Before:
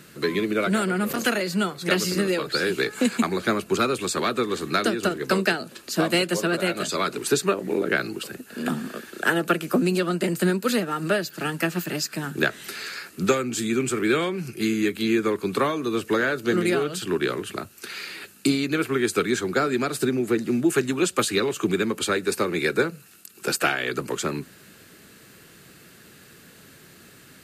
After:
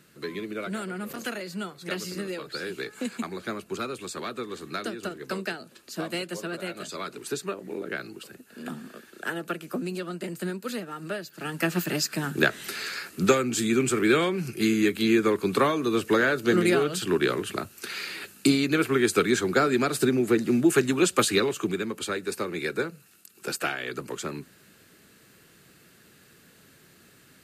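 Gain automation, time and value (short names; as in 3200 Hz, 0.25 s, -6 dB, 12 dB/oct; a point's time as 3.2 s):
11.32 s -10 dB
11.72 s +0.5 dB
21.35 s +0.5 dB
21.8 s -6.5 dB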